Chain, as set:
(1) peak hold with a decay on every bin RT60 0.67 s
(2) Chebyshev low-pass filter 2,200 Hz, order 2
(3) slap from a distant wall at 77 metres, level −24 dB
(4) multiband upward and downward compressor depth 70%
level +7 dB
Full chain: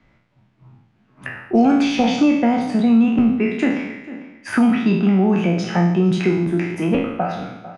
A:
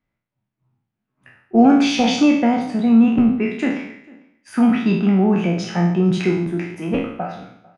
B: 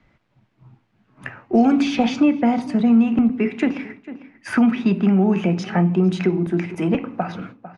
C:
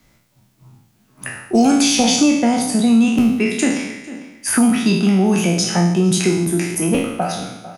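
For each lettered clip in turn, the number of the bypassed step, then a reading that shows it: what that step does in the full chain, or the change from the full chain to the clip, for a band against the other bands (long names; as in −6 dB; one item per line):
4, change in crest factor +1.5 dB
1, change in momentary loudness spread +3 LU
2, 4 kHz band +8.5 dB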